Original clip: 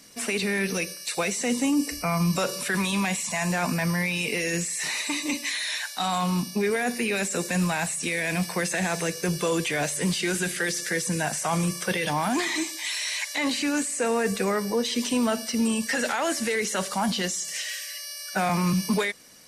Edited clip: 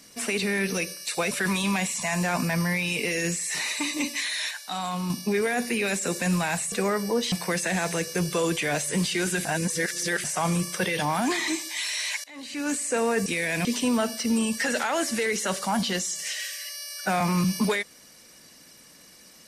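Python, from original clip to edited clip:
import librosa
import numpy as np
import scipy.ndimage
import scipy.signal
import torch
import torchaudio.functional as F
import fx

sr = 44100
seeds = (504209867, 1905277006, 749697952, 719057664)

y = fx.edit(x, sr, fx.cut(start_s=1.31, length_s=1.29),
    fx.clip_gain(start_s=5.8, length_s=0.59, db=-4.5),
    fx.swap(start_s=8.01, length_s=0.39, other_s=14.34, other_length_s=0.6),
    fx.reverse_span(start_s=10.53, length_s=0.79),
    fx.fade_in_from(start_s=13.32, length_s=0.51, curve='qua', floor_db=-20.0), tone=tone)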